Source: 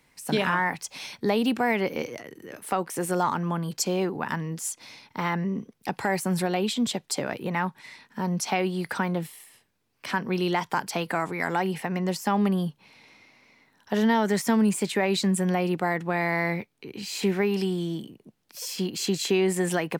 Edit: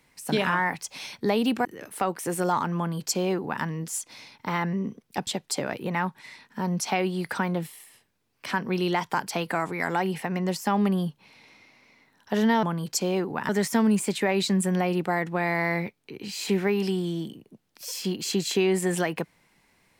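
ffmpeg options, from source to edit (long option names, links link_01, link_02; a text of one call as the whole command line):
ffmpeg -i in.wav -filter_complex "[0:a]asplit=5[link_01][link_02][link_03][link_04][link_05];[link_01]atrim=end=1.652[link_06];[link_02]atrim=start=2.358:end=5.982[link_07];[link_03]atrim=start=6.868:end=14.232[link_08];[link_04]atrim=start=3.478:end=4.342[link_09];[link_05]atrim=start=14.228[link_10];[link_06][link_07]acrossfade=duration=0.004:curve1=hsin:curve2=hsin[link_11];[link_11][link_08]acrossfade=duration=0.004:curve1=hsin:curve2=hsin[link_12];[link_12][link_09]acrossfade=duration=0.004:curve1=hsin:curve2=hsin[link_13];[link_13][link_10]acrossfade=duration=0.004:curve1=hsin:curve2=hsin" out.wav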